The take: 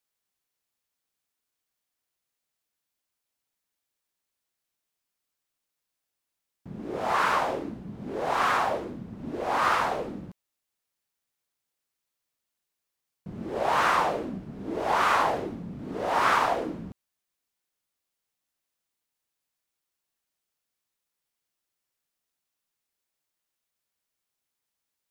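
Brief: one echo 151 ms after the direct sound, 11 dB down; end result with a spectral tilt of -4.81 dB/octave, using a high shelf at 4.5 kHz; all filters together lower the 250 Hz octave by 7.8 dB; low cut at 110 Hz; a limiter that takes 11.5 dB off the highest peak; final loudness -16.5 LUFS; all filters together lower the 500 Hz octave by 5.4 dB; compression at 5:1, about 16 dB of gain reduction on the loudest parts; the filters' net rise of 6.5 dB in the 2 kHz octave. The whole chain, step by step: high-pass 110 Hz; peaking EQ 250 Hz -8.5 dB; peaking EQ 500 Hz -6 dB; peaking EQ 2 kHz +8 dB; treble shelf 4.5 kHz +6.5 dB; compression 5:1, threshold -35 dBFS; peak limiter -34.5 dBFS; delay 151 ms -11 dB; trim +27 dB

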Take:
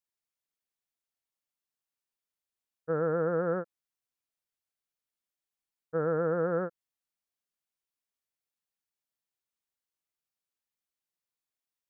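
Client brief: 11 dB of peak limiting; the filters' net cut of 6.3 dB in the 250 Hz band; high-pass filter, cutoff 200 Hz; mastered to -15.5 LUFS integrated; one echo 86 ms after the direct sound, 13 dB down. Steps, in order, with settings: high-pass 200 Hz; peaking EQ 250 Hz -8 dB; peak limiter -32.5 dBFS; delay 86 ms -13 dB; trim +26.5 dB

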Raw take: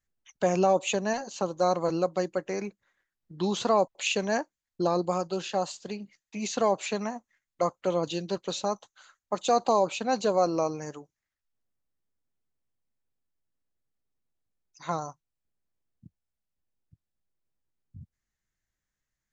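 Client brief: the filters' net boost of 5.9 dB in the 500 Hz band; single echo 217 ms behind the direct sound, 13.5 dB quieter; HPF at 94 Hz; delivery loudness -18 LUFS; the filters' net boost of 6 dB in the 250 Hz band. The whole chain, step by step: high-pass 94 Hz; peaking EQ 250 Hz +7 dB; peaking EQ 500 Hz +5.5 dB; delay 217 ms -13.5 dB; trim +5.5 dB

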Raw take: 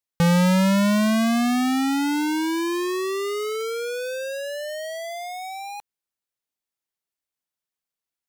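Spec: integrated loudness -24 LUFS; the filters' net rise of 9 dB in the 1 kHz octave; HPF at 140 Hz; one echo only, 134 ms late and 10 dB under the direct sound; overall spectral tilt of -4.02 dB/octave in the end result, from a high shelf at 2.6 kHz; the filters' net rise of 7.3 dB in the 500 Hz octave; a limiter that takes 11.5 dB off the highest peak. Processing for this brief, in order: high-pass 140 Hz; peaking EQ 500 Hz +6.5 dB; peaking EQ 1 kHz +8.5 dB; treble shelf 2.6 kHz +5.5 dB; peak limiter -16 dBFS; delay 134 ms -10 dB; trim -1 dB

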